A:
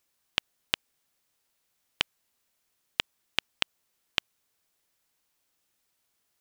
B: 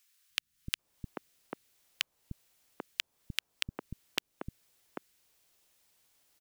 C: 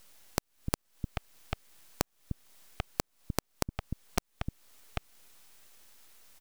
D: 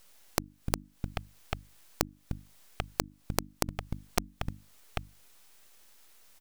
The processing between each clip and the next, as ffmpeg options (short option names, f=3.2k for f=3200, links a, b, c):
-filter_complex "[0:a]acrossover=split=490[a][b];[b]acompressor=threshold=-36dB:ratio=6[c];[a][c]amix=inputs=2:normalize=0,acrossover=split=230|1300[d][e][f];[d]adelay=300[g];[e]adelay=790[h];[g][h][f]amix=inputs=3:normalize=0,volume=6dB"
-af "acompressor=threshold=-49dB:ratio=2,aeval=exprs='abs(val(0))':c=same,volume=14dB"
-filter_complex "[0:a]asplit=2[a][b];[b]acrusher=bits=4:mix=0:aa=0.000001,volume=-8dB[c];[a][c]amix=inputs=2:normalize=0,bandreject=f=50:t=h:w=6,bandreject=f=100:t=h:w=6,bandreject=f=150:t=h:w=6,bandreject=f=200:t=h:w=6,bandreject=f=250:t=h:w=6,bandreject=f=300:t=h:w=6,volume=-1dB"